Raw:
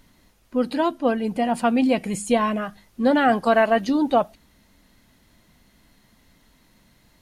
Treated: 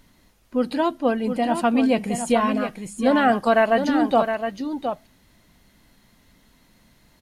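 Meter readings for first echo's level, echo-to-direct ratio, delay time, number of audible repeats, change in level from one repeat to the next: -7.5 dB, -7.5 dB, 715 ms, 1, no regular repeats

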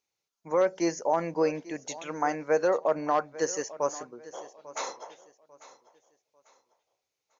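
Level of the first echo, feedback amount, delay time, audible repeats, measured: -18.0 dB, 31%, 845 ms, 2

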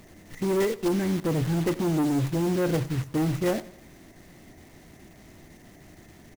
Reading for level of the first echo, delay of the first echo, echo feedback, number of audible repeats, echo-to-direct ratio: -19.5 dB, 90 ms, 46%, 3, -18.5 dB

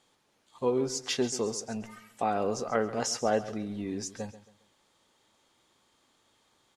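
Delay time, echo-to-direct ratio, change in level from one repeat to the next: 136 ms, -14.5 dB, -9.5 dB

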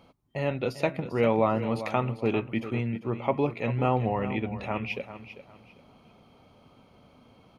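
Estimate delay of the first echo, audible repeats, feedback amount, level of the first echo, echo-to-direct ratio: 396 ms, 2, 27%, -12.5 dB, -12.0 dB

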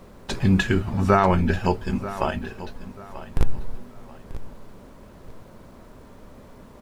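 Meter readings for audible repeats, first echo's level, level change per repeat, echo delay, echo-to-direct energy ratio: 2, -15.0 dB, -11.0 dB, 938 ms, -14.5 dB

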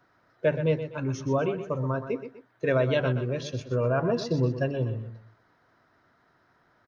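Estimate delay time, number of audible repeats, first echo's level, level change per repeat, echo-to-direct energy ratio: 124 ms, 2, -10.5 dB, -8.5 dB, -10.0 dB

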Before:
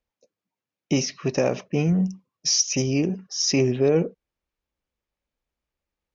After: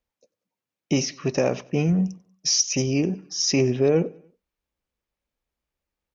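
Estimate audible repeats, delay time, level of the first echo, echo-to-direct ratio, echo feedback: 2, 94 ms, -24.0 dB, -23.0 dB, 50%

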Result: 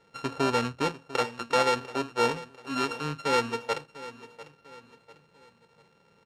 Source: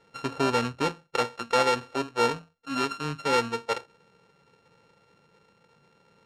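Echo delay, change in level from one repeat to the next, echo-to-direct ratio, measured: 697 ms, -8.0 dB, -15.5 dB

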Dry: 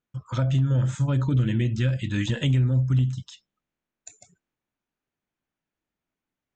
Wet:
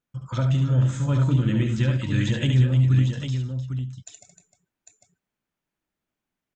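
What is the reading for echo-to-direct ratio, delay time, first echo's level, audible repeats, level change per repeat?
-2.5 dB, 70 ms, -6.0 dB, 4, no regular repeats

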